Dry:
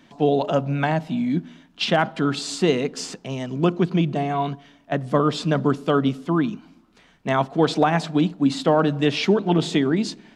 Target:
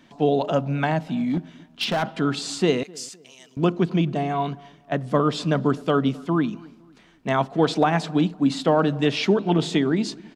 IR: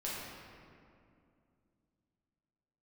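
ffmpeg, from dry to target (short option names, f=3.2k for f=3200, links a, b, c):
-filter_complex "[0:a]asplit=3[a][b][c];[a]afade=t=out:st=1.07:d=0.02[d];[b]volume=18dB,asoftclip=hard,volume=-18dB,afade=t=in:st=1.07:d=0.02,afade=t=out:st=2.02:d=0.02[e];[c]afade=t=in:st=2.02:d=0.02[f];[d][e][f]amix=inputs=3:normalize=0,asettb=1/sr,asplit=3[g][h][i];[g]atrim=end=2.834[j];[h]atrim=start=2.83:end=3.57,asetpts=PTS-STARTPTS,afade=t=in:d=0.004:c=qsin,afade=t=out:st=0.736:d=0.004:c=qsin,aderivative[k];[i]atrim=start=3.566[l];[j][k]acrossfade=d=0.004:c1=hsin:c2=qsin[m];[m][l]acrossfade=d=0.004:c1=qsin:c2=hsin,asplit=2[n][o];[o]adelay=256,lowpass=f=1.4k:p=1,volume=-23.5dB,asplit=2[p][q];[q]adelay=256,lowpass=f=1.4k:p=1,volume=0.4,asplit=2[r][s];[s]adelay=256,lowpass=f=1.4k:p=1,volume=0.4[t];[n][p][r][t]amix=inputs=4:normalize=0,volume=-1dB"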